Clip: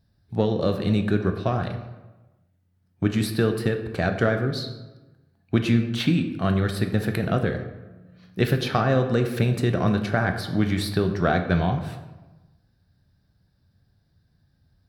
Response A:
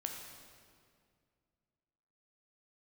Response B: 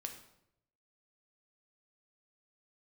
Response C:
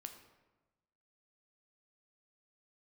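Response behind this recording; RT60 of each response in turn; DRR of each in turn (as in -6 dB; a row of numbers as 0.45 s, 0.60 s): C; 2.1 s, 0.80 s, 1.1 s; 1.5 dB, 4.0 dB, 5.5 dB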